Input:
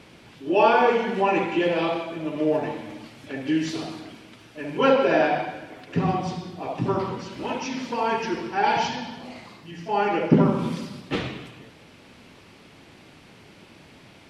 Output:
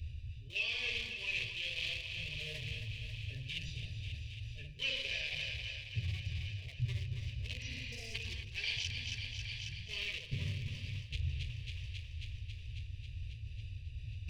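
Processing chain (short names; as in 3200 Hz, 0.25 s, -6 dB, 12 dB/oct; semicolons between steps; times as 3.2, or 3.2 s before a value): Wiener smoothing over 41 samples; in parallel at +2 dB: compressor, threshold -32 dBFS, peak gain reduction 19.5 dB; on the sum: inverse Chebyshev band-stop 170–1500 Hz, stop band 40 dB; high shelf 3400 Hz -11 dB; thinning echo 0.272 s, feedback 75%, high-pass 410 Hz, level -10 dB; spectral repair 7.62–8.12, 860–4700 Hz before; tremolo 2.2 Hz, depth 35%; reverse; upward compressor, threshold -38 dBFS; reverse; gain +5.5 dB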